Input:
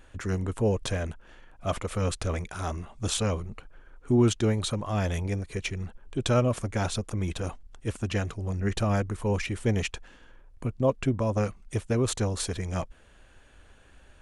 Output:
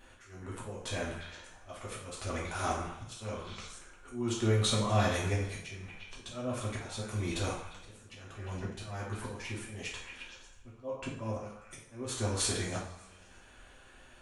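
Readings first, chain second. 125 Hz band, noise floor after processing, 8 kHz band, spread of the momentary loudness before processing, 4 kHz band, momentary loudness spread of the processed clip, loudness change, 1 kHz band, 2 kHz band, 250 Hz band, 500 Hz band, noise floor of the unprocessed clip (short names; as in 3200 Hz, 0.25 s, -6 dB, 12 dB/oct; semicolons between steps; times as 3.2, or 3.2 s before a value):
-8.0 dB, -57 dBFS, -2.5 dB, 11 LU, -2.0 dB, 20 LU, -6.5 dB, -3.5 dB, -3.0 dB, -9.0 dB, -8.5 dB, -55 dBFS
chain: low shelf 280 Hz -5.5 dB; on a send: delay with a stepping band-pass 0.117 s, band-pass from 1100 Hz, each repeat 0.7 oct, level -9 dB; on the sum: auto swell 0.571 s; two-slope reverb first 0.52 s, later 2.4 s, from -25 dB, DRR -5 dB; gain -3.5 dB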